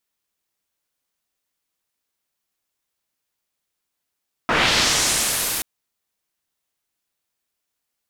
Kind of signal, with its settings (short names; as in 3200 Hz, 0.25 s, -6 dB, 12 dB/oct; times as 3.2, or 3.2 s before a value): swept filtered noise white, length 1.13 s lowpass, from 1200 Hz, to 14000 Hz, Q 1.2, linear, gain ramp -15 dB